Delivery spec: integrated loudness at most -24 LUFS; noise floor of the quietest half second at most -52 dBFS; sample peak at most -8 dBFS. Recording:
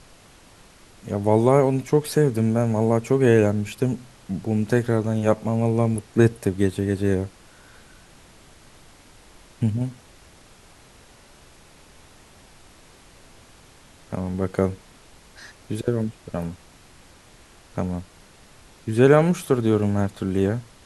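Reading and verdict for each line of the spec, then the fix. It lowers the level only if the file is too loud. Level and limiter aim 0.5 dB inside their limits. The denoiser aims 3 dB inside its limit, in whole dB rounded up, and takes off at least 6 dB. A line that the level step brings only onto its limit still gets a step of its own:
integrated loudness -22.5 LUFS: fail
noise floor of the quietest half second -50 dBFS: fail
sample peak -3.5 dBFS: fail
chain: noise reduction 6 dB, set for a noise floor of -50 dBFS; trim -2 dB; peak limiter -8.5 dBFS

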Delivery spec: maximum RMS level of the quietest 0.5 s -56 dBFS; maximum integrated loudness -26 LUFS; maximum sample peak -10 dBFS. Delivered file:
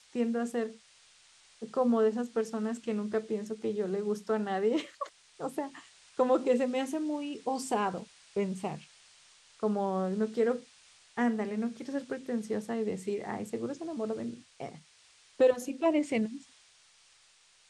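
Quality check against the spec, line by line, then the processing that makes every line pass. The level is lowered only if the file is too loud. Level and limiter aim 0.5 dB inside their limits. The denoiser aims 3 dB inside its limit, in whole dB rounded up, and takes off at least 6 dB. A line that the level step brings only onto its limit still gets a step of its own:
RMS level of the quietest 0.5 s -63 dBFS: pass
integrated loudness -32.5 LUFS: pass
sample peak -14.0 dBFS: pass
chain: none needed

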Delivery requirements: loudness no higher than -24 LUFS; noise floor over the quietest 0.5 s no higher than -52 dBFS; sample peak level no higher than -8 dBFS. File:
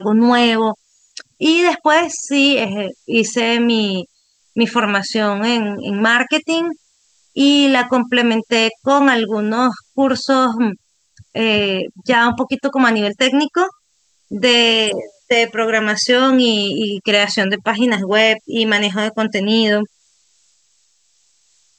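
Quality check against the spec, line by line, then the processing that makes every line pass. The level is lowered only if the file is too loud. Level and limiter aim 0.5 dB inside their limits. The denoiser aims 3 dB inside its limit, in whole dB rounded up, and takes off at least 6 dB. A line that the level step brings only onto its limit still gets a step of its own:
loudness -15.5 LUFS: fail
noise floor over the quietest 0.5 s -61 dBFS: pass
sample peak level -2.5 dBFS: fail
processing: trim -9 dB

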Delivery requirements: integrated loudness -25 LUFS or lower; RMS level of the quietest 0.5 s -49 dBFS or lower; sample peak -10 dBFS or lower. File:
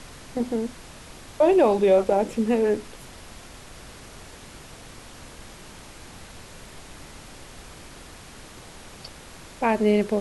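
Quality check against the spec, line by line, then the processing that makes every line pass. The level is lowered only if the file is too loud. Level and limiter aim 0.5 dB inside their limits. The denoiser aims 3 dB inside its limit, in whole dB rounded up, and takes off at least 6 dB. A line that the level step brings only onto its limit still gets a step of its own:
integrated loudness -22.0 LUFS: fail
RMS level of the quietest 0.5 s -44 dBFS: fail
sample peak -8.0 dBFS: fail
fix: noise reduction 6 dB, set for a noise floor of -44 dBFS; trim -3.5 dB

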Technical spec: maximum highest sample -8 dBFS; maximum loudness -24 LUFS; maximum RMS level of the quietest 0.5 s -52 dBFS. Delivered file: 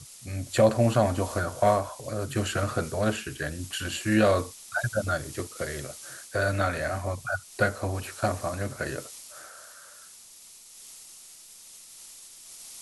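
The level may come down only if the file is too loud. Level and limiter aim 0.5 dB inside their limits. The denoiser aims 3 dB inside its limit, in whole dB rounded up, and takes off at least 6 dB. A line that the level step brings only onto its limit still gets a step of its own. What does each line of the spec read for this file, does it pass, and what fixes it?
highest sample -8.5 dBFS: pass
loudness -28.0 LUFS: pass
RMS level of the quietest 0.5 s -50 dBFS: fail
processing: noise reduction 6 dB, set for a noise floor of -50 dBFS

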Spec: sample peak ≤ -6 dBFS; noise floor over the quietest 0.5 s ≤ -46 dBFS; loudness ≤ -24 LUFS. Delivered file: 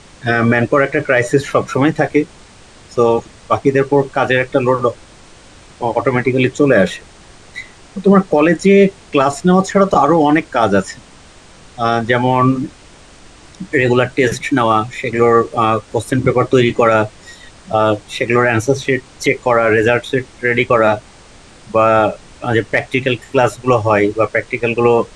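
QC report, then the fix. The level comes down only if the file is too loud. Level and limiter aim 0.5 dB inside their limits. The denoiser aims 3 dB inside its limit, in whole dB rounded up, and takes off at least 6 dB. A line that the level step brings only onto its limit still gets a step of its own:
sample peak -1.5 dBFS: fail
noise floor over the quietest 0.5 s -41 dBFS: fail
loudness -14.5 LUFS: fail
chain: trim -10 dB

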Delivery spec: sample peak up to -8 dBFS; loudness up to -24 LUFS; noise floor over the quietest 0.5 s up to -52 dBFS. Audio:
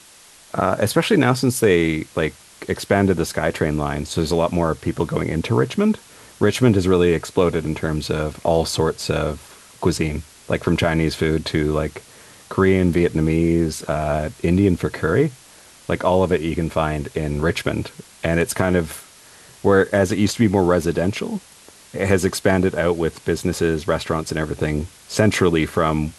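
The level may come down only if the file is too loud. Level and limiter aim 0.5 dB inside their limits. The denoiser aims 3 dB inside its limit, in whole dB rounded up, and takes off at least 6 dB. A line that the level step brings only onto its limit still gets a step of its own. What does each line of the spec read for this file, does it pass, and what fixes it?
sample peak -2.0 dBFS: fail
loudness -20.0 LUFS: fail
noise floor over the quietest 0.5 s -47 dBFS: fail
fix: noise reduction 6 dB, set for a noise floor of -47 dBFS; trim -4.5 dB; peak limiter -8.5 dBFS

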